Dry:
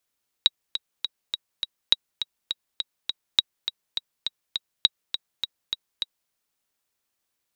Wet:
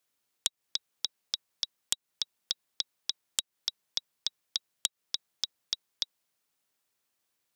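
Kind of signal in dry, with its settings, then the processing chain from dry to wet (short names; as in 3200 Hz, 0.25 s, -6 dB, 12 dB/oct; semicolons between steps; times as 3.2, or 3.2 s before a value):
metronome 205 bpm, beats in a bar 5, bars 4, 3830 Hz, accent 10 dB -3 dBFS
HPF 83 Hz; compressor 6:1, threshold -24 dBFS; Doppler distortion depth 0.96 ms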